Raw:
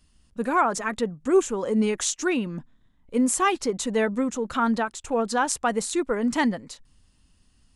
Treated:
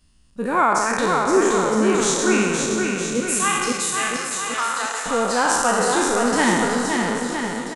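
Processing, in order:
peak hold with a decay on every bin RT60 1.58 s
0:03.20–0:05.06: high-pass filter 1,100 Hz 12 dB per octave
bouncing-ball delay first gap 520 ms, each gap 0.85×, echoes 5

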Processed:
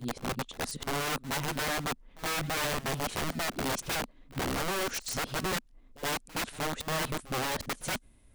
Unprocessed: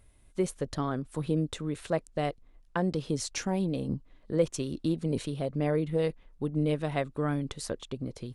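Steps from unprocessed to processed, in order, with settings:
played backwards from end to start
parametric band 240 Hz +8.5 dB 0.54 octaves
wrap-around overflow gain 26.5 dB
echo ahead of the sound 70 ms −19.5 dB

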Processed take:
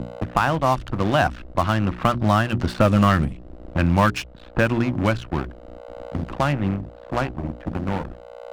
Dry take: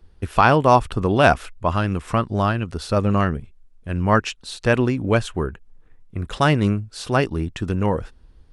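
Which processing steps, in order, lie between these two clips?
source passing by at 0:03.14, 15 m/s, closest 8.5 metres
low-pass that shuts in the quiet parts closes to 2,400 Hz, open at −19 dBFS
noise gate −57 dBFS, range −17 dB
low-pass that shuts in the quiet parts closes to 800 Hz, open at −21 dBFS
mains hum 60 Hz, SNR 12 dB
dead-zone distortion −44 dBFS
leveller curve on the samples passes 2
parametric band 430 Hz −14 dB 0.23 octaves
mains-hum notches 60/120/180/240/300/360/420 Hz
multiband upward and downward compressor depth 70%
level +3 dB

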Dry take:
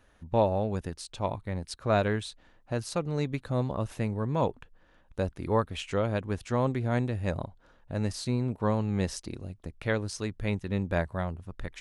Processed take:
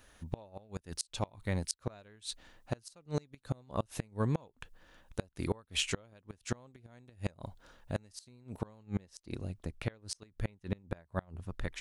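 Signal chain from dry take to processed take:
high-shelf EQ 3,200 Hz +11.5 dB, from 0:08.83 +3 dB
gate with flip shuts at −19 dBFS, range −30 dB

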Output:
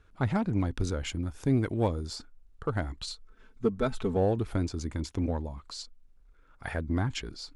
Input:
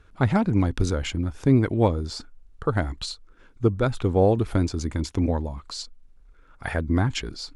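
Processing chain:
in parallel at −11 dB: hard clipping −19.5 dBFS, distortion −9 dB
0:01.07–0:02.16: on the sum: high-shelf EQ 8,400 Hz +11.5 dB
0:03.07–0:04.17: comb filter 4.6 ms, depth 80%
level −8.5 dB

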